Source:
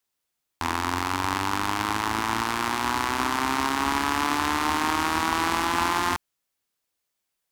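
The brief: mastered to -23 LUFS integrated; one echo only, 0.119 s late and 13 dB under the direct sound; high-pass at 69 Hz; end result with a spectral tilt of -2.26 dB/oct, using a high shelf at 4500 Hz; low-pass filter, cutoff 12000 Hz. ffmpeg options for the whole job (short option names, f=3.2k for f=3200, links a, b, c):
-af "highpass=69,lowpass=12k,highshelf=f=4.5k:g=5.5,aecho=1:1:119:0.224,volume=1dB"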